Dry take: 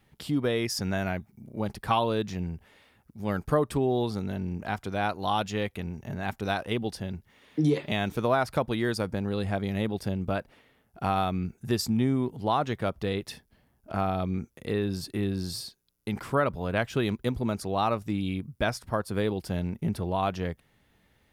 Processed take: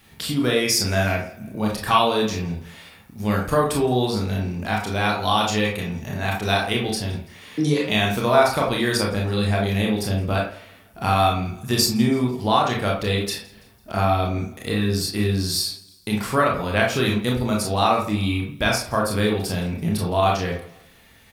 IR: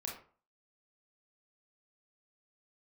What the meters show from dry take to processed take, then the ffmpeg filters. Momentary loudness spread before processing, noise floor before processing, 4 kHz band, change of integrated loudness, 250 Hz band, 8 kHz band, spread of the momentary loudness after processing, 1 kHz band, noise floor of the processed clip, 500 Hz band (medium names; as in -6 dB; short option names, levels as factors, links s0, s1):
10 LU, -67 dBFS, +12.5 dB, +7.5 dB, +6.0 dB, +14.0 dB, 9 LU, +8.0 dB, -51 dBFS, +6.5 dB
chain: -filter_complex "[0:a]highshelf=f=2100:g=10.5,asplit=2[s0][s1];[s1]acompressor=threshold=0.00794:ratio=6,volume=1[s2];[s0][s2]amix=inputs=2:normalize=0,aecho=1:1:166|332|498:0.0708|0.0333|0.0156[s3];[1:a]atrim=start_sample=2205[s4];[s3][s4]afir=irnorm=-1:irlink=0,volume=1.78"